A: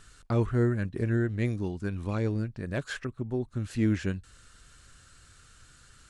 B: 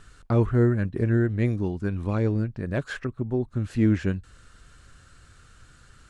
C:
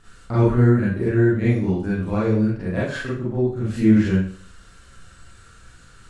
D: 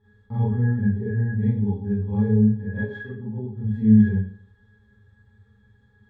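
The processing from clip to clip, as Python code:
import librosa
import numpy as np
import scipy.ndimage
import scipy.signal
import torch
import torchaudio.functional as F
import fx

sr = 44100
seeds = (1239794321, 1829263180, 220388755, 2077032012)

y1 = fx.high_shelf(x, sr, hz=2700.0, db=-9.0)
y1 = y1 * 10.0 ** (5.0 / 20.0)
y2 = fx.rev_schroeder(y1, sr, rt60_s=0.47, comb_ms=33, drr_db=-9.0)
y2 = y2 * 10.0 ** (-4.0 / 20.0)
y3 = fx.octave_resonator(y2, sr, note='G#', decay_s=0.21)
y3 = y3 * 10.0 ** (6.0 / 20.0)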